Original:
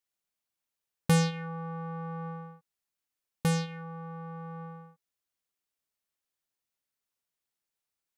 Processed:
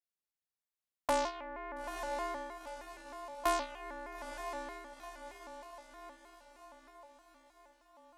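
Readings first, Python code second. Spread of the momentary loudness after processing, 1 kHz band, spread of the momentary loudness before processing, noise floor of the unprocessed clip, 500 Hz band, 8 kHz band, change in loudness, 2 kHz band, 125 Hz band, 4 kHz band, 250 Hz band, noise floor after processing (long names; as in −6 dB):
23 LU, +3.0 dB, 18 LU, below −85 dBFS, 0.0 dB, −5.5 dB, −7.0 dB, −2.0 dB, below −30 dB, −5.0 dB, −13.5 dB, below −85 dBFS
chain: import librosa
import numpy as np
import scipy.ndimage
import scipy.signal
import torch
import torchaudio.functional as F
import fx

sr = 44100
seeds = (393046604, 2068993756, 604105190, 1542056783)

y = fx.echo_diffused(x, sr, ms=910, feedback_pct=53, wet_db=-9.5)
y = fx.rider(y, sr, range_db=4, speed_s=2.0)
y = y * np.sin(2.0 * np.pi * 790.0 * np.arange(len(y)) / sr)
y = fx.vibrato_shape(y, sr, shape='square', rate_hz=3.2, depth_cents=160.0)
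y = y * librosa.db_to_amplitude(-3.5)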